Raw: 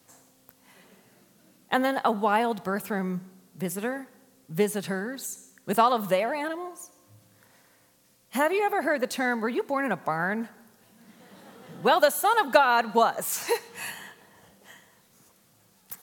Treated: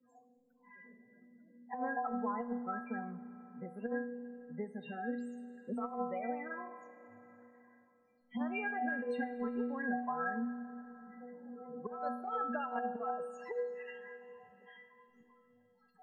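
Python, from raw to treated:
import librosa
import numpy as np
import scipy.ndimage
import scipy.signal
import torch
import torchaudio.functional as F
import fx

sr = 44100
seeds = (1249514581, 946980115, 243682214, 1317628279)

y = fx.spec_topn(x, sr, count=16)
y = fx.spacing_loss(y, sr, db_at_10k=37)
y = fx.noise_reduce_blind(y, sr, reduce_db=10)
y = fx.low_shelf(y, sr, hz=430.0, db=-6.5)
y = fx.stiff_resonator(y, sr, f0_hz=240.0, decay_s=0.56, stiffness=0.008)
y = fx.over_compress(y, sr, threshold_db=-48.0, ratio=-0.5)
y = fx.rev_schroeder(y, sr, rt60_s=2.6, comb_ms=29, drr_db=13.5)
y = fx.band_squash(y, sr, depth_pct=40)
y = F.gain(torch.from_numpy(y), 12.5).numpy()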